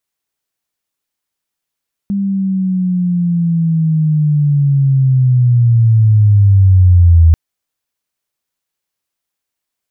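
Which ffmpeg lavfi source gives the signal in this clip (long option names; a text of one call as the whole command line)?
ffmpeg -f lavfi -i "aevalsrc='pow(10,(-13+10*t/5.24)/20)*sin(2*PI*(200*t-120*t*t/(2*5.24)))':duration=5.24:sample_rate=44100" out.wav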